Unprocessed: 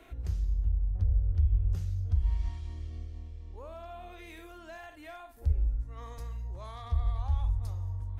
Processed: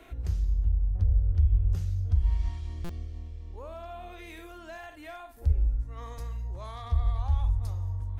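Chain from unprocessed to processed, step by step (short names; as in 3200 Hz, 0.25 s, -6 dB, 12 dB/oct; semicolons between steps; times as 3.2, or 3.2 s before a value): stuck buffer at 2.84, samples 256, times 8; gain +3 dB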